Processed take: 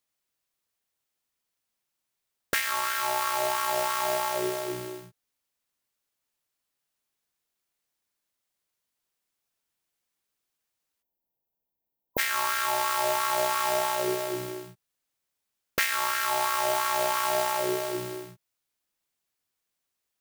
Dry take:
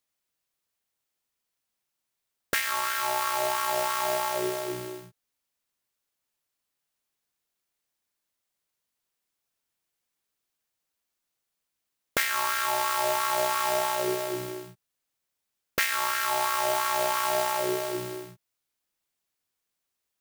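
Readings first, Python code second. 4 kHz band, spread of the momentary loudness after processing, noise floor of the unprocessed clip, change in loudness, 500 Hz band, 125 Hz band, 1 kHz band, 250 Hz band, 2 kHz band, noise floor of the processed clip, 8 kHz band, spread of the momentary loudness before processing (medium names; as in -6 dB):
0.0 dB, 9 LU, -83 dBFS, 0.0 dB, 0.0 dB, 0.0 dB, 0.0 dB, 0.0 dB, 0.0 dB, -85 dBFS, 0.0 dB, 9 LU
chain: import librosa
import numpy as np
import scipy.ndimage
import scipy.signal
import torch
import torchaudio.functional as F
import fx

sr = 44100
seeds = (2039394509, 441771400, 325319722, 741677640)

y = fx.spec_erase(x, sr, start_s=11.02, length_s=1.16, low_hz=1000.0, high_hz=12000.0)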